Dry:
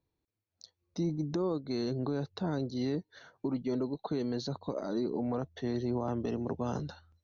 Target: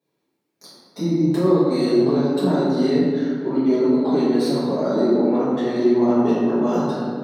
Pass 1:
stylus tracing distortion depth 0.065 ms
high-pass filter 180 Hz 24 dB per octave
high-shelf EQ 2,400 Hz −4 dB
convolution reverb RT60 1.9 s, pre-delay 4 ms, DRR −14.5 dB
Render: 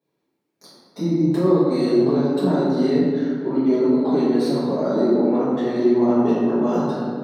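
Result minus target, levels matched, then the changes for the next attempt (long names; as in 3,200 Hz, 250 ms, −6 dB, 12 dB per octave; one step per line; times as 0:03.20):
4,000 Hz band −3.0 dB
remove: high-shelf EQ 2,400 Hz −4 dB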